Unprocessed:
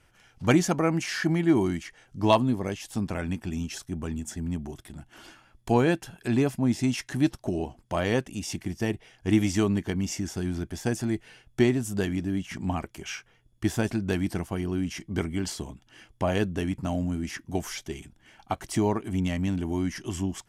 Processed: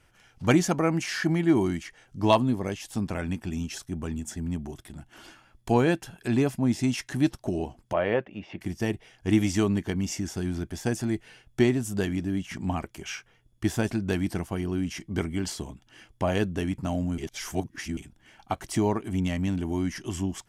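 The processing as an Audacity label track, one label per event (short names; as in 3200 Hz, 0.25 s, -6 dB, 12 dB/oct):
7.930000	8.610000	speaker cabinet 130–2700 Hz, peaks and dips at 150 Hz -8 dB, 260 Hz -7 dB, 570 Hz +6 dB
17.180000	17.970000	reverse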